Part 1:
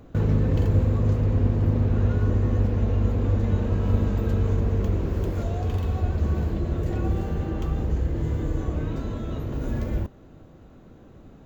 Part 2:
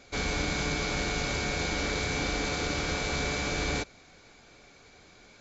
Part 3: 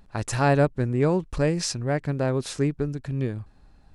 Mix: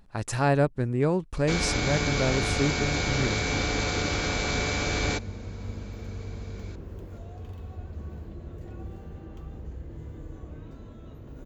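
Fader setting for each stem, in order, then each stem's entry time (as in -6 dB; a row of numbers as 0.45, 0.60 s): -14.5, +2.5, -2.5 dB; 1.75, 1.35, 0.00 s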